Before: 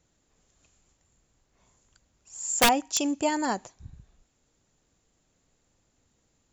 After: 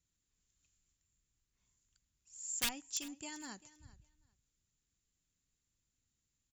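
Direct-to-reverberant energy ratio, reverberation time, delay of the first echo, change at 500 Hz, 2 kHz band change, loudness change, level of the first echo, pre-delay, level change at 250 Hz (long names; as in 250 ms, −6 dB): no reverb audible, no reverb audible, 394 ms, −27.5 dB, −15.5 dB, −14.5 dB, −19.0 dB, no reverb audible, −20.0 dB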